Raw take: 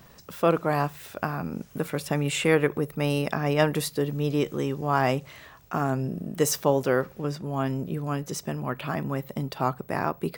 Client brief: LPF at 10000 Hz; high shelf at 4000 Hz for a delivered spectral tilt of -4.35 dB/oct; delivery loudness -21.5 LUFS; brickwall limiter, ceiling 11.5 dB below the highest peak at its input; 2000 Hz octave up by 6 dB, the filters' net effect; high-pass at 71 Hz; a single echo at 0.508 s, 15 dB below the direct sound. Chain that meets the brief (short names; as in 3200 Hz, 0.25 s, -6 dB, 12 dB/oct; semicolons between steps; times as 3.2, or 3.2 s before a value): HPF 71 Hz; LPF 10000 Hz; bell 2000 Hz +5.5 dB; high shelf 4000 Hz +9 dB; limiter -15.5 dBFS; echo 0.508 s -15 dB; gain +7.5 dB